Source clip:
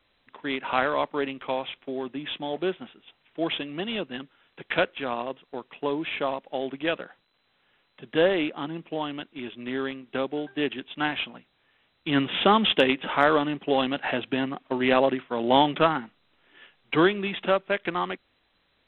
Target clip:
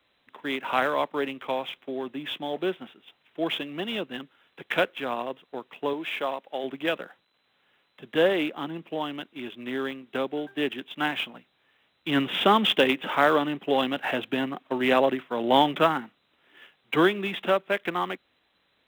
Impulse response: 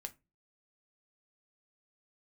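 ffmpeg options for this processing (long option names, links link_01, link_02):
-filter_complex "[0:a]highpass=frequency=130:poles=1,acrossover=split=440|1200[link_01][link_02][link_03];[link_03]acrusher=bits=5:mode=log:mix=0:aa=0.000001[link_04];[link_01][link_02][link_04]amix=inputs=3:normalize=0,asettb=1/sr,asplit=3[link_05][link_06][link_07];[link_05]atrim=end=5.934[link_08];[link_06]atrim=start=5.93:end=6.64,asetpts=PTS-STARTPTS,afade=type=in:duration=0.004:curve=qsin,afade=type=out:start_time=0.706:duration=0.004:curve=qsin,lowshelf=frequency=230:gain=-11[link_09];[link_07]atrim=start=6.636[link_10];[link_08][link_09]acrossfade=duration=0.004:curve1=hsin:curve2=qsin[link_11];[link_11][link_10]acrossfade=duration=0.004:curve1=qsin:curve2=hsin"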